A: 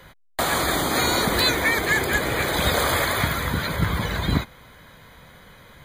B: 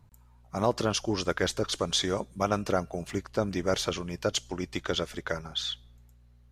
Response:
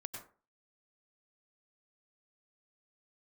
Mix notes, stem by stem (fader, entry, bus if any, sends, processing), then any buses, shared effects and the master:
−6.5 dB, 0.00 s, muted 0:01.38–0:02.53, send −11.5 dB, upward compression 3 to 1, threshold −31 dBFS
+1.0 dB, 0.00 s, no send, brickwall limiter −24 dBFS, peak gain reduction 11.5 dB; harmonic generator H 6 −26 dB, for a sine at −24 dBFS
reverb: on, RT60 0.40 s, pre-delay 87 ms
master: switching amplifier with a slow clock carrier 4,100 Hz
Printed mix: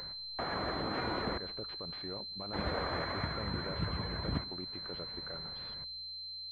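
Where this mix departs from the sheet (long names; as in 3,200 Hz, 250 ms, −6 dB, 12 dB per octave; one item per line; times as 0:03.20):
stem A −6.5 dB → −14.5 dB
stem B +1.0 dB → −9.5 dB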